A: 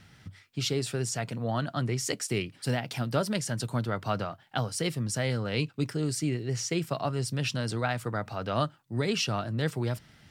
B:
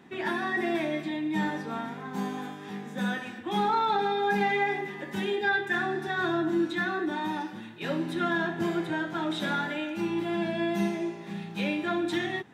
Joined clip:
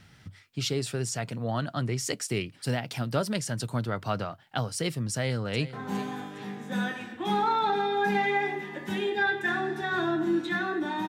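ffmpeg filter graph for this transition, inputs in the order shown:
-filter_complex "[0:a]apad=whole_dur=11.08,atrim=end=11.08,atrim=end=5.732[s0];[1:a]atrim=start=1.988:end=7.34[s1];[s0][s1]acrossfade=d=0.004:c1=hsin:c2=hsin,asplit=2[s2][s3];[s3]afade=t=in:st=5.12:d=0.01,afade=t=out:st=5.73:d=0.01,aecho=0:1:410|820|1230|1640:0.177828|0.0800226|0.0360102|0.0162046[s4];[s2][s4]amix=inputs=2:normalize=0"

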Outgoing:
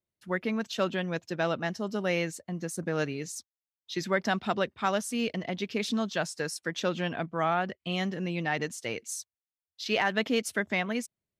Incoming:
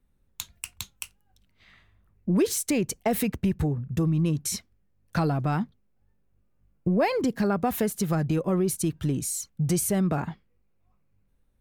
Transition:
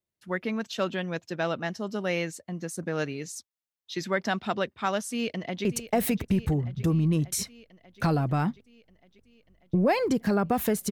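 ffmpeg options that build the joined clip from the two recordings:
-filter_complex "[0:a]apad=whole_dur=10.91,atrim=end=10.91,atrim=end=5.652[s0];[1:a]atrim=start=2.778:end=8.04[s1];[s0][s1]acrossfade=d=0.004:c1=hsin:c2=hsin,asplit=2[s2][s3];[s3]afade=t=in:st=5.1:d=0.01,afade=t=out:st=5.65:d=0.01,aecho=0:1:590|1180|1770|2360|2950|3540|4130|4720|5310:0.237137|0.165996|0.116197|0.0813381|0.0569367|0.0398557|0.027899|0.0195293|0.0136705[s4];[s2][s4]amix=inputs=2:normalize=0"

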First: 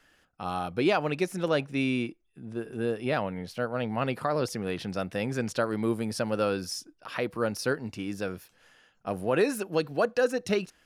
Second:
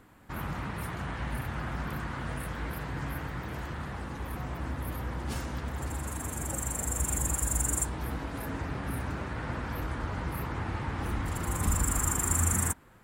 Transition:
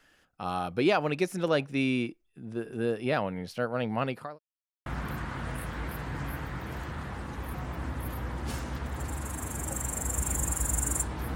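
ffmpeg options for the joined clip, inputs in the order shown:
-filter_complex "[0:a]apad=whole_dur=11.35,atrim=end=11.35,asplit=2[s0][s1];[s0]atrim=end=4.39,asetpts=PTS-STARTPTS,afade=t=out:st=3.98:d=0.41[s2];[s1]atrim=start=4.39:end=4.86,asetpts=PTS-STARTPTS,volume=0[s3];[1:a]atrim=start=1.68:end=8.17,asetpts=PTS-STARTPTS,afade=t=in:d=0.004:c=hsin[s4];[s2][s3][s4]concat=n=3:v=0:a=1"

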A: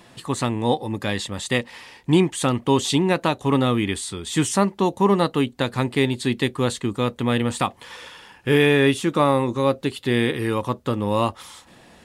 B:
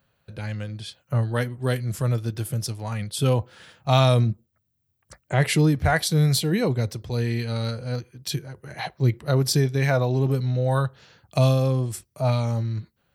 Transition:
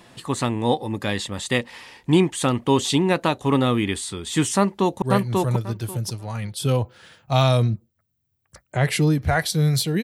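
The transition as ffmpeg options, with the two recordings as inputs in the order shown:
-filter_complex "[0:a]apad=whole_dur=10.03,atrim=end=10.03,atrim=end=5.022[s0];[1:a]atrim=start=1.588:end=6.6[s1];[s0][s1]acrossfade=d=0.004:c1=hsin:c2=hsin,asplit=2[s2][s3];[s3]afade=t=in:st=4.56:d=0.01,afade=t=out:st=5.02:d=0.01,aecho=0:1:540|1080|1620:0.841395|0.126209|0.0189314[s4];[s2][s4]amix=inputs=2:normalize=0"

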